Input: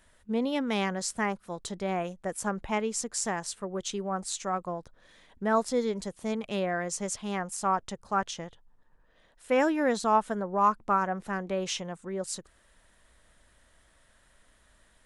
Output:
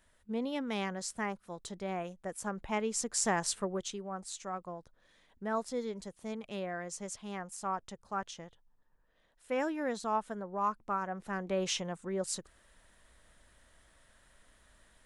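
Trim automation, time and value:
2.51 s -6.5 dB
3.56 s +3.5 dB
4.00 s -8.5 dB
11.01 s -8.5 dB
11.62 s -1 dB

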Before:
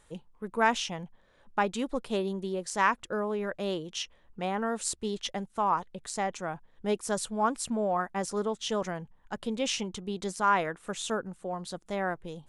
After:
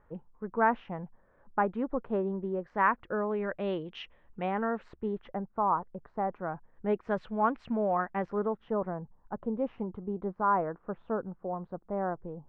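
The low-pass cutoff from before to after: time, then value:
low-pass 24 dB/octave
2.45 s 1.6 kHz
3.67 s 2.6 kHz
4.42 s 2.6 kHz
5.53 s 1.3 kHz
6.19 s 1.3 kHz
7.25 s 2.4 kHz
8.15 s 2.4 kHz
8.79 s 1.2 kHz

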